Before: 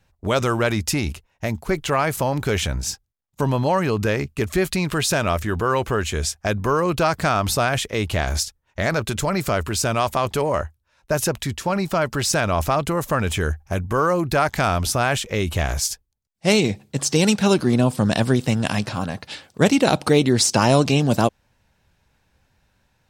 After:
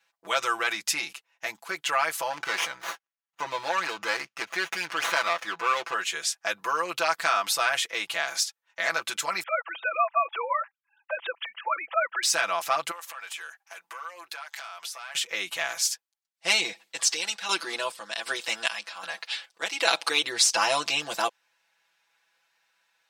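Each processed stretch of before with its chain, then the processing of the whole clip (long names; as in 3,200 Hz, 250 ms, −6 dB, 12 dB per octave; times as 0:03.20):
0:02.30–0:05.94: linear-phase brick-wall low-pass 7,000 Hz + high-shelf EQ 2,600 Hz +6 dB + windowed peak hold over 9 samples
0:09.43–0:12.23: three sine waves on the formant tracks + high-pass filter 460 Hz 24 dB per octave
0:12.91–0:15.15: high-pass filter 690 Hz + downward compressor 10 to 1, threshold −31 dBFS + saturating transformer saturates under 2,000 Hz
0:16.72–0:20.23: high-pass filter 210 Hz + parametric band 3,300 Hz +3 dB 2.5 octaves + square-wave tremolo 1.3 Hz, depth 60%, duty 55%
whole clip: Bessel high-pass filter 1,500 Hz, order 2; high-shelf EQ 5,100 Hz −7.5 dB; comb filter 6 ms, depth 93%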